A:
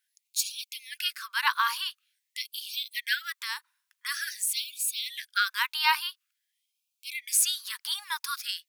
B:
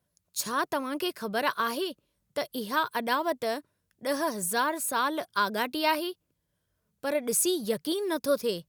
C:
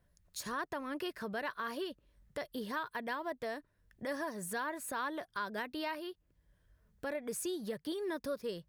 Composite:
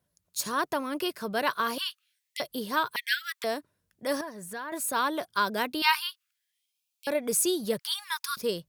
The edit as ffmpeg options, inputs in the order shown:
-filter_complex "[0:a]asplit=4[a][b][c][d];[1:a]asplit=6[e][f][g][h][i][j];[e]atrim=end=1.782[k];[a]atrim=start=1.778:end=2.402[l];[f]atrim=start=2.398:end=2.962[m];[b]atrim=start=2.958:end=3.442[n];[g]atrim=start=3.438:end=4.212[o];[2:a]atrim=start=4.208:end=4.722[p];[h]atrim=start=4.718:end=5.822[q];[c]atrim=start=5.818:end=7.072[r];[i]atrim=start=7.068:end=7.792[s];[d]atrim=start=7.788:end=8.372[t];[j]atrim=start=8.368[u];[k][l]acrossfade=d=0.004:c1=hsin:c2=hsin[v];[v][m]acrossfade=d=0.004:c1=hsin:c2=hsin[w];[w][n]acrossfade=d=0.004:c1=hsin:c2=hsin[x];[x][o]acrossfade=d=0.004:c1=hsin:c2=hsin[y];[y][p]acrossfade=d=0.004:c1=hsin:c2=hsin[z];[z][q]acrossfade=d=0.004:c1=hsin:c2=hsin[aa];[aa][r]acrossfade=d=0.004:c1=hsin:c2=hsin[ab];[ab][s]acrossfade=d=0.004:c1=hsin:c2=hsin[ac];[ac][t]acrossfade=d=0.004:c1=hsin:c2=hsin[ad];[ad][u]acrossfade=d=0.004:c1=hsin:c2=hsin"

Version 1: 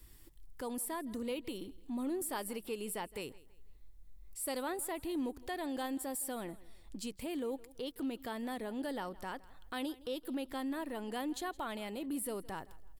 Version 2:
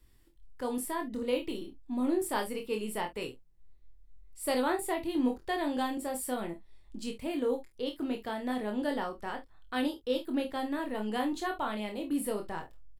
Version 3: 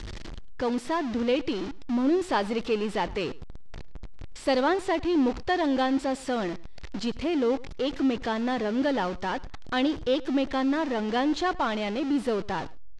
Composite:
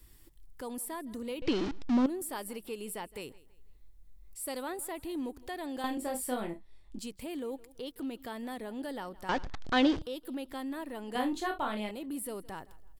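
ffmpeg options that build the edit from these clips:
-filter_complex "[2:a]asplit=2[a][b];[1:a]asplit=2[c][d];[0:a]asplit=5[e][f][g][h][i];[e]atrim=end=1.422[j];[a]atrim=start=1.418:end=2.062[k];[f]atrim=start=2.058:end=5.842[l];[c]atrim=start=5.838:end=6.992[m];[g]atrim=start=6.988:end=9.292[n];[b]atrim=start=9.288:end=10.022[o];[h]atrim=start=10.018:end=11.152[p];[d]atrim=start=11.148:end=11.912[q];[i]atrim=start=11.908[r];[j][k]acrossfade=d=0.004:c1=hsin:c2=hsin[s];[s][l]acrossfade=d=0.004:c1=hsin:c2=hsin[t];[t][m]acrossfade=d=0.004:c1=hsin:c2=hsin[u];[u][n]acrossfade=d=0.004:c1=hsin:c2=hsin[v];[v][o]acrossfade=d=0.004:c1=hsin:c2=hsin[w];[w][p]acrossfade=d=0.004:c1=hsin:c2=hsin[x];[x][q]acrossfade=d=0.004:c1=hsin:c2=hsin[y];[y][r]acrossfade=d=0.004:c1=hsin:c2=hsin"

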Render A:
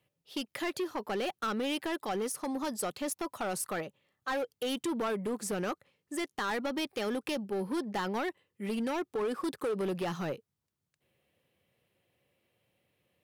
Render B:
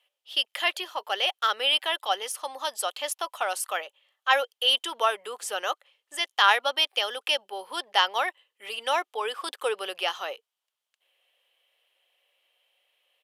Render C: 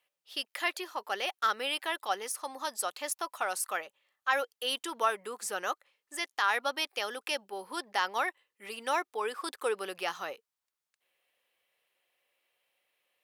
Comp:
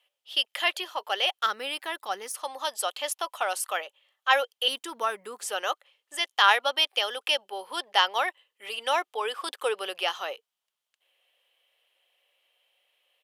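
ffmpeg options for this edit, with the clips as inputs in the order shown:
-filter_complex "[2:a]asplit=2[a][b];[1:a]asplit=3[c][d][e];[c]atrim=end=1.462[f];[a]atrim=start=1.458:end=2.342[g];[d]atrim=start=2.338:end=4.682[h];[b]atrim=start=4.678:end=5.412[i];[e]atrim=start=5.408[j];[f][g]acrossfade=d=0.004:c1=hsin:c2=hsin[k];[k][h]acrossfade=d=0.004:c1=hsin:c2=hsin[l];[l][i]acrossfade=d=0.004:c1=hsin:c2=hsin[m];[m][j]acrossfade=d=0.004:c1=hsin:c2=hsin"

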